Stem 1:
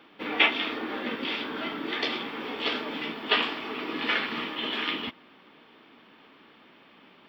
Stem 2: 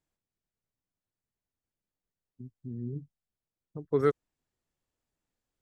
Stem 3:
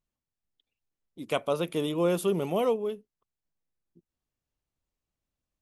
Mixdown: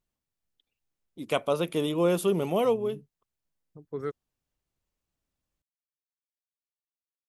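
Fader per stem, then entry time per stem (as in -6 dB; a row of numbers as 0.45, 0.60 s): off, -8.5 dB, +1.5 dB; off, 0.00 s, 0.00 s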